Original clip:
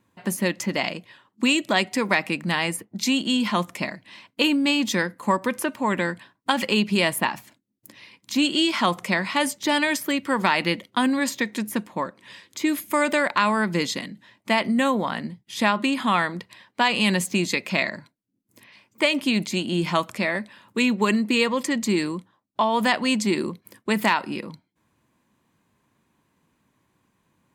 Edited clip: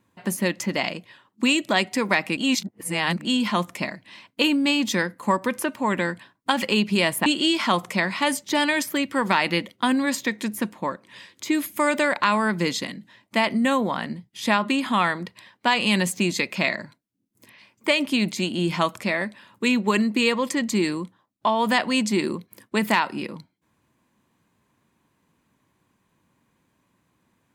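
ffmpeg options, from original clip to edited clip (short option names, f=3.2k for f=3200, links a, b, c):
-filter_complex "[0:a]asplit=4[a][b][c][d];[a]atrim=end=2.372[e];[b]atrim=start=2.368:end=3.252,asetpts=PTS-STARTPTS,areverse[f];[c]atrim=start=3.248:end=7.262[g];[d]atrim=start=8.398[h];[e][f]acrossfade=d=0.004:c1=hsin:c2=hsin[i];[i][g]acrossfade=d=0.004:c1=hsin:c2=hsin[j];[j][h]acrossfade=d=0.004:c1=hsin:c2=hsin"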